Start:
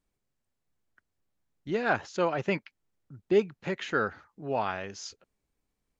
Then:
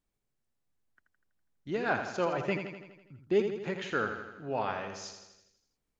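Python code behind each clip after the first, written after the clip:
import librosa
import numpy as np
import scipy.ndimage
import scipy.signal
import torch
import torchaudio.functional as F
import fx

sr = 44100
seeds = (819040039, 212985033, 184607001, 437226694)

y = fx.echo_feedback(x, sr, ms=82, feedback_pct=59, wet_db=-7.5)
y = y * librosa.db_to_amplitude(-3.5)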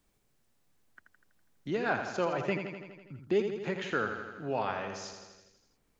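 y = fx.band_squash(x, sr, depth_pct=40)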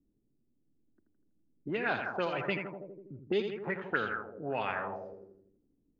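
y = fx.envelope_lowpass(x, sr, base_hz=290.0, top_hz=3800.0, q=3.3, full_db=-26.0, direction='up')
y = y * librosa.db_to_amplitude(-3.0)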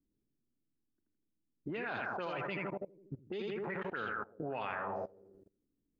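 y = fx.dynamic_eq(x, sr, hz=1100.0, q=1.6, threshold_db=-49.0, ratio=4.0, max_db=3)
y = fx.level_steps(y, sr, step_db=22)
y = y * librosa.db_to_amplitude(5.5)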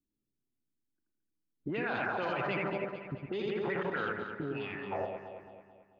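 y = fx.noise_reduce_blind(x, sr, reduce_db=10)
y = fx.spec_box(y, sr, start_s=4.13, length_s=0.79, low_hz=440.0, high_hz=1700.0, gain_db=-17)
y = fx.echo_alternate(y, sr, ms=110, hz=940.0, feedback_pct=69, wet_db=-4.5)
y = y * librosa.db_to_amplitude(4.0)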